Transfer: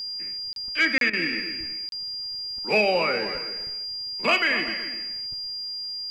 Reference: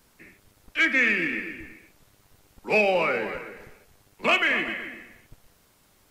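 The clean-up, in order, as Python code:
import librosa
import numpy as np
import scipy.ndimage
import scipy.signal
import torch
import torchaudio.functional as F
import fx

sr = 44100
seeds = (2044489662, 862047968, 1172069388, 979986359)

y = fx.fix_declick_ar(x, sr, threshold=6.5)
y = fx.notch(y, sr, hz=4800.0, q=30.0)
y = fx.fix_interpolate(y, sr, at_s=(0.53, 0.98, 1.89), length_ms=32.0)
y = fx.fix_interpolate(y, sr, at_s=(1.1,), length_ms=31.0)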